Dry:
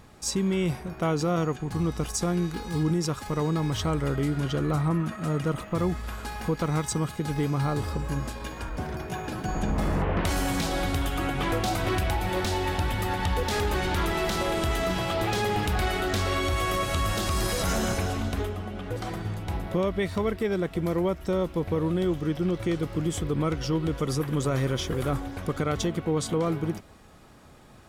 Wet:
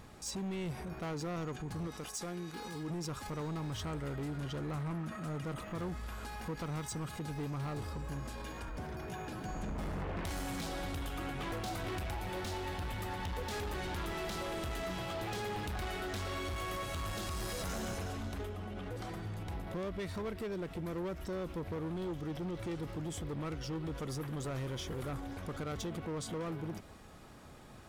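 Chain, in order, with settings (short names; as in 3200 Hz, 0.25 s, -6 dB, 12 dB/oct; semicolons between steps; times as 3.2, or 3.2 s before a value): 1.87–2.9 HPF 340 Hz 6 dB/oct; hard clip -25 dBFS, distortion -12 dB; limiter -33 dBFS, peak gain reduction 8 dB; gain -2 dB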